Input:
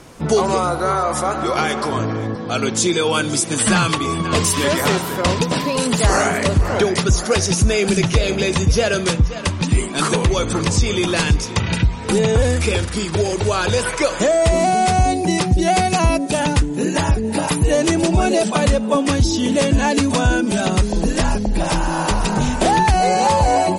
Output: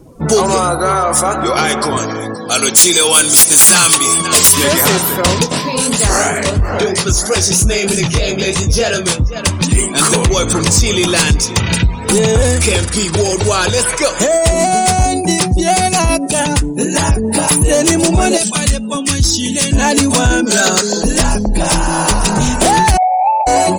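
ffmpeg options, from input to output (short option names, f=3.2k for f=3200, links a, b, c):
-filter_complex "[0:a]asettb=1/sr,asplit=3[a][b][c];[a]atrim=end=1.974[d];[b]atrim=start=1.97:end=4.48,asetpts=PTS-STARTPTS,afade=t=in:d=0.004:c=qsin,afade=t=out:st=2.506:d=0.004:c=qsin,aemphasis=mode=production:type=bsi[e];[c]atrim=start=4.476[f];[d][e]acrossfade=d=0.004:c1=hsin:c2=qsin[g];[g][f]acrossfade=d=0.004:c1=qsin:c2=hsin,asplit=3[h][i][j];[h]afade=t=out:st=5.44:d=0.02[k];[i]flanger=delay=19:depth=7:speed=3,afade=t=in:st=5.44:d=0.02,afade=t=out:st=9.34:d=0.02[l];[j]afade=t=in:st=9.34:d=0.02[m];[k][l][m]amix=inputs=3:normalize=0,asettb=1/sr,asplit=3[n][o][p];[n]atrim=end=13.664[q];[o]atrim=start=13.66:end=17.01,asetpts=PTS-STARTPTS,afade=t=in:d=0.004:c=qsin,afade=t=out:st=3.346:d=0.004:c=qsin,tremolo=f=7.3:d=0.36[r];[p]atrim=start=17.006[s];[q][r]acrossfade=d=0.004:c1=hsin:c2=qsin[t];[t][s]acrossfade=d=0.004:c1=qsin:c2=hsin,asettb=1/sr,asplit=3[u][v][w];[u]atrim=end=18.374[x];[v]atrim=start=18.37:end=19.73,asetpts=PTS-STARTPTS,afade=t=in:d=0.004:c=qsin,afade=t=out:st=1.356:d=0.004:c=qsin,equalizer=f=570:w=0.58:g=-12[y];[w]atrim=start=19.726[z];[x][y]acrossfade=d=0.004:c1=hsin:c2=qsin[aa];[aa][z]acrossfade=d=0.004:c1=qsin:c2=hsin,asplit=3[ab][ac][ad];[ab]afade=t=out:st=20.45:d=0.02[ae];[ac]highpass=f=200:w=0.5412,highpass=f=200:w=1.3066,equalizer=f=300:t=q:w=4:g=-7,equalizer=f=450:t=q:w=4:g=7,equalizer=f=1.5k:t=q:w=4:g=10,equalizer=f=4.4k:t=q:w=4:g=9,equalizer=f=6.9k:t=q:w=4:g=8,lowpass=f=8.8k:w=0.5412,lowpass=f=8.8k:w=1.3066,afade=t=in:st=20.45:d=0.02,afade=t=out:st=21.02:d=0.02[af];[ad]afade=t=in:st=21.02:d=0.02[ag];[ae][af][ag]amix=inputs=3:normalize=0,asettb=1/sr,asplit=3[ah][ai][aj];[ah]atrim=end=22.974[ak];[ai]atrim=start=22.97:end=23.47,asetpts=PTS-STARTPTS,afade=t=in:d=0.004:c=qsin,afade=t=out:st=0.496:d=0.004:c=qsin,asuperpass=centerf=740:order=12:qfactor=2.3[al];[aj]atrim=start=23.466[am];[ak][al]acrossfade=d=0.004:c1=hsin:c2=qsin[an];[an][am]acrossfade=d=0.004:c1=qsin:c2=hsin,afftdn=nr=23:nf=-38,aemphasis=mode=production:type=50fm,acontrast=76,volume=-1dB"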